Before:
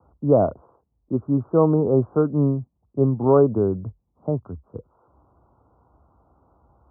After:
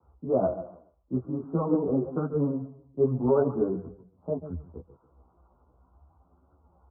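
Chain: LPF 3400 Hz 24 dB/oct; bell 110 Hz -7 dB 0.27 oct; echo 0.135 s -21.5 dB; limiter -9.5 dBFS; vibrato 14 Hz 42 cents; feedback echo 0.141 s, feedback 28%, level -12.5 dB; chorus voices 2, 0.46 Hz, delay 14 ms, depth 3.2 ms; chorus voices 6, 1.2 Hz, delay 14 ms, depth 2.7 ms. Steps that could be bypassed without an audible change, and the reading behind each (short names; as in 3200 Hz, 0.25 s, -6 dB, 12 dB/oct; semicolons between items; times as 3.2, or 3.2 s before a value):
LPF 3400 Hz: input band ends at 1200 Hz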